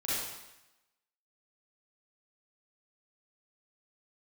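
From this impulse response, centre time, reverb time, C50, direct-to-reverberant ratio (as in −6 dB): 97 ms, 0.95 s, −4.5 dB, −10.5 dB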